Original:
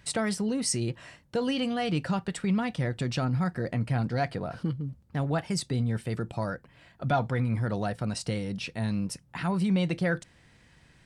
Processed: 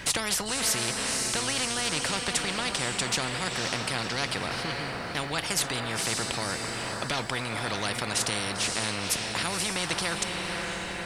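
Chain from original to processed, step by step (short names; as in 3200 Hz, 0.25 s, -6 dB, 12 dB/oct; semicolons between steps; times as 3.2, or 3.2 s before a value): diffused feedback echo 0.53 s, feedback 42%, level -11 dB; spectral compressor 4:1; gain +4 dB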